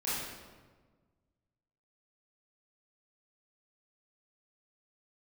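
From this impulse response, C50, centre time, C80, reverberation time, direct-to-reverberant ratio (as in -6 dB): -2.5 dB, 97 ms, 1.0 dB, 1.4 s, -11.0 dB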